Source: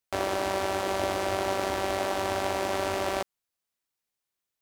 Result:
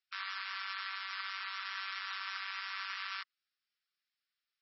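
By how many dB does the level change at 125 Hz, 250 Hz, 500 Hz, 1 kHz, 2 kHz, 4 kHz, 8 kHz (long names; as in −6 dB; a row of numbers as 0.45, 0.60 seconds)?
below −40 dB, below −40 dB, below −40 dB, −14.0 dB, −4.0 dB, −4.5 dB, below −25 dB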